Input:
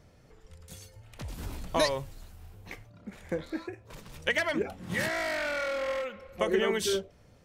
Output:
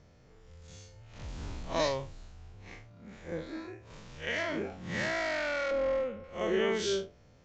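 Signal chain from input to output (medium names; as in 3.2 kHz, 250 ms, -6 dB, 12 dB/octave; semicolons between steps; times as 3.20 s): spectral blur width 101 ms; 5.71–6.24 s: tilt shelf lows +8.5 dB, about 810 Hz; resampled via 16 kHz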